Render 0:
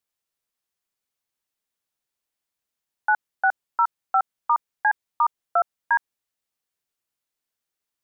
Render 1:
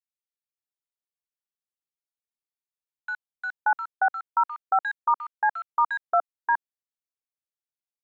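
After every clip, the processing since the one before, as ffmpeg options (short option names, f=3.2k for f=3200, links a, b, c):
-filter_complex "[0:a]afwtdn=0.0126,acrossover=split=1700[a][b];[a]adelay=580[c];[c][b]amix=inputs=2:normalize=0"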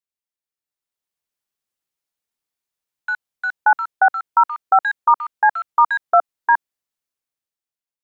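-af "dynaudnorm=f=260:g=7:m=9dB"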